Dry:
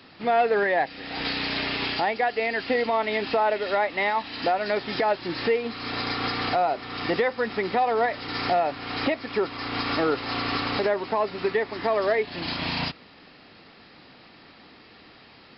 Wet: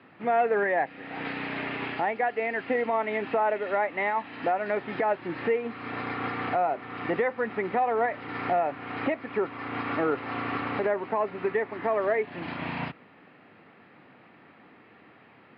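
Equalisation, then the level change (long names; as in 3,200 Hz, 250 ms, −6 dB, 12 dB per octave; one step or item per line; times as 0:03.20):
high-pass filter 97 Hz 24 dB per octave
low-pass filter 2,400 Hz 24 dB per octave
−2.5 dB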